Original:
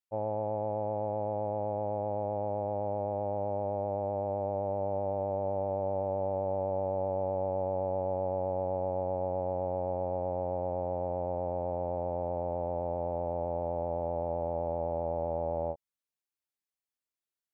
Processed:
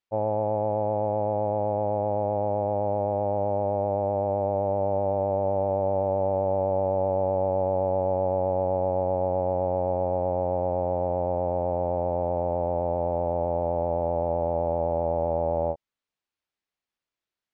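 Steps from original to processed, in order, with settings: LPF 4300 Hz; gain +7 dB

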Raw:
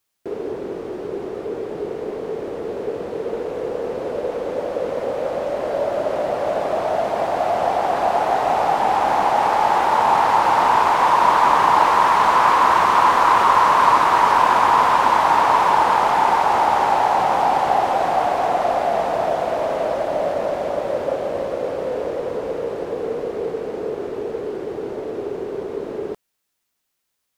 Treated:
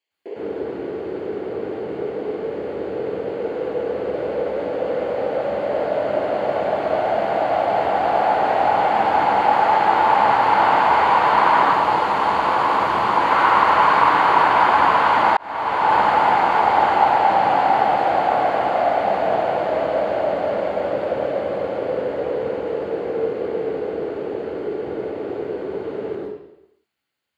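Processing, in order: 11.62–13.21 bell 1700 Hz -6 dB 1.8 oct; reverb RT60 0.85 s, pre-delay 0.103 s, DRR -3 dB; 15.37–15.98 fade in; gain -13.5 dB

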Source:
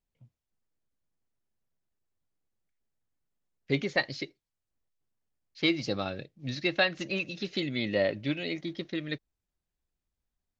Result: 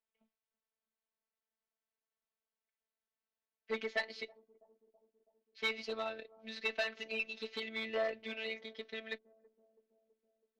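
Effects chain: robotiser 222 Hz; overloaded stage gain 24.5 dB; three-band isolator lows -18 dB, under 390 Hz, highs -18 dB, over 4100 Hz; added harmonics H 6 -33 dB, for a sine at -20.5 dBFS; on a send: analogue delay 0.327 s, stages 2048, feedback 61%, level -23 dB

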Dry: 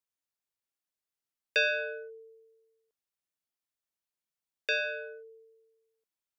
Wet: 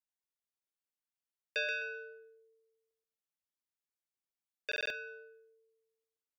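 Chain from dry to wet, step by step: on a send: feedback echo 0.129 s, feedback 20%, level -5 dB; on the sum: stuck buffer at 4.67, samples 2048, times 4; gain -8.5 dB

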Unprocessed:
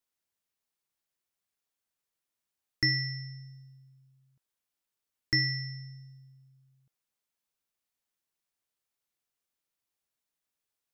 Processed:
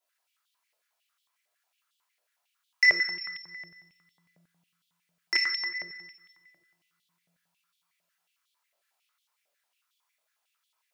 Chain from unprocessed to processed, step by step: compressor, threshold -31 dBFS, peak gain reduction 9 dB; chorus voices 2, 0.28 Hz, delay 24 ms, depth 2.5 ms; frequency shift +38 Hz; reverb RT60 1.7 s, pre-delay 3 ms, DRR -3 dB; stepped high-pass 11 Hz 600–3400 Hz; gain +6 dB

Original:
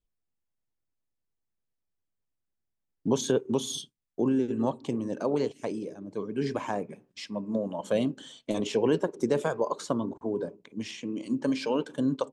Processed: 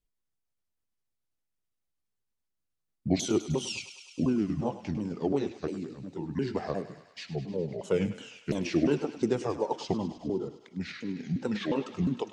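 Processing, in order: repeated pitch sweeps -7.5 st, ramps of 0.355 s; thinning echo 0.102 s, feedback 76%, high-pass 660 Hz, level -12 dB

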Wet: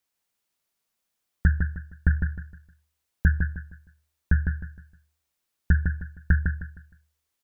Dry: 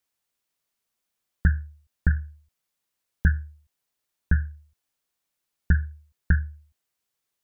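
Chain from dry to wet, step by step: feedback echo 0.155 s, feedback 31%, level -5 dB

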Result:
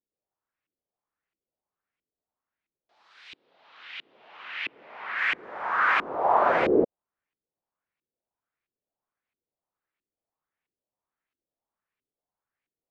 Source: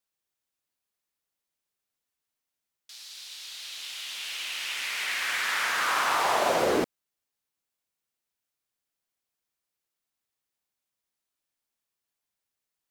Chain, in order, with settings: LFO low-pass saw up 1.5 Hz 320–2500 Hz; 3.35–5.18 Chebyshev band-pass 130–4300 Hz, order 2

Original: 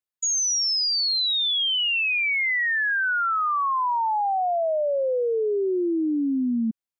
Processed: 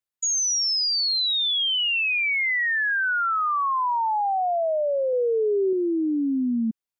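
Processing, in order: 5.13–5.73 bell 170 Hz +8.5 dB 1.3 oct

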